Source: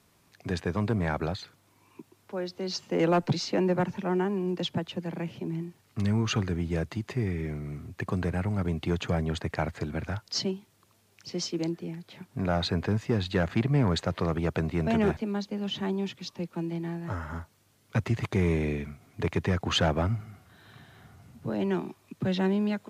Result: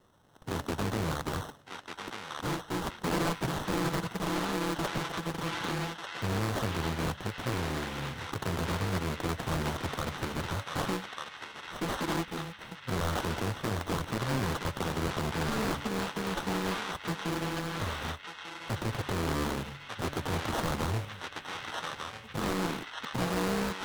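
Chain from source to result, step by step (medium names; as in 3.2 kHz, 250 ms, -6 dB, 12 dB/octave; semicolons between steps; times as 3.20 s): bit-reversed sample order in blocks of 64 samples; high-pass 52 Hz 12 dB/octave; de-hum 148.9 Hz, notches 29; sample-and-hold 18×; band-passed feedback delay 1146 ms, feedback 73%, band-pass 2.5 kHz, level -3.5 dB; speed mistake 25 fps video run at 24 fps; peak limiter -22 dBFS, peak gain reduction 9 dB; loudspeaker Doppler distortion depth 0.7 ms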